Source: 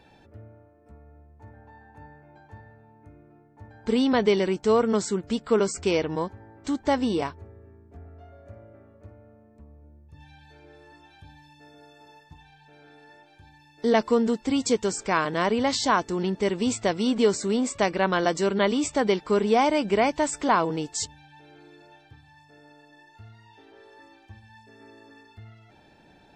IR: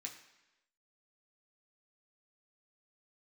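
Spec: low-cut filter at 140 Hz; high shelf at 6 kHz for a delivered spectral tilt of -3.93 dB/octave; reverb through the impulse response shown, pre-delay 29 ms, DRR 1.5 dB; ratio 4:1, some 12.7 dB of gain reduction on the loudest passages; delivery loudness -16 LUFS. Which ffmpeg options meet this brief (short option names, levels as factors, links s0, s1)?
-filter_complex "[0:a]highpass=140,highshelf=f=6000:g=-3.5,acompressor=threshold=0.0251:ratio=4,asplit=2[s0][s1];[1:a]atrim=start_sample=2205,adelay=29[s2];[s1][s2]afir=irnorm=-1:irlink=0,volume=1.26[s3];[s0][s3]amix=inputs=2:normalize=0,volume=7.08"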